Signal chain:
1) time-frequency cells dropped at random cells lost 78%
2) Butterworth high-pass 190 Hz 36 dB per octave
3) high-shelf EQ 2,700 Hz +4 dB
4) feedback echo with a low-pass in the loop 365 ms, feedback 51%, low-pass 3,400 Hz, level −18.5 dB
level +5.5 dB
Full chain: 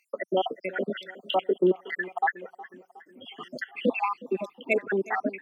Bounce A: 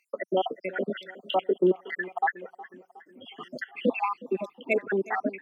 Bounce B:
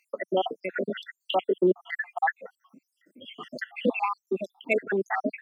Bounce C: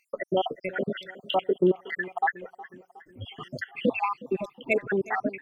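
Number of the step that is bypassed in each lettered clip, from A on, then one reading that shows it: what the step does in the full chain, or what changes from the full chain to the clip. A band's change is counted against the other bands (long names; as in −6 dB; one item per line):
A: 3, 4 kHz band −2.0 dB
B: 4, change in momentary loudness spread −1 LU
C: 2, 125 Hz band +4.5 dB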